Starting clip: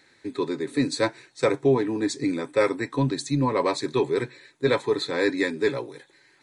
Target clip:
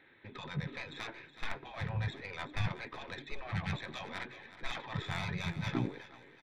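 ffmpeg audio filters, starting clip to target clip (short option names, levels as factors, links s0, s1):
-af "afftfilt=real='re*lt(hypot(re,im),0.0794)':imag='im*lt(hypot(re,im),0.0794)':win_size=1024:overlap=0.75,aresample=8000,aresample=44100,adynamicequalizer=threshold=0.00282:dfrequency=200:dqfactor=7.6:tfrequency=200:tqfactor=7.6:attack=5:release=100:ratio=0.375:range=3.5:mode=boostabove:tftype=bell,aeval=exprs='(tanh(35.5*val(0)+0.75)-tanh(0.75))/35.5':c=same,aecho=1:1:372|744|1116:0.2|0.0718|0.0259,afwtdn=0.0178,volume=7.94"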